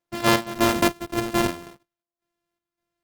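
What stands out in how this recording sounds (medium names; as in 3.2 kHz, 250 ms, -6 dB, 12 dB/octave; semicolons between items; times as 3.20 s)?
a buzz of ramps at a fixed pitch in blocks of 128 samples; chopped level 1.8 Hz, depth 60%, duty 65%; Opus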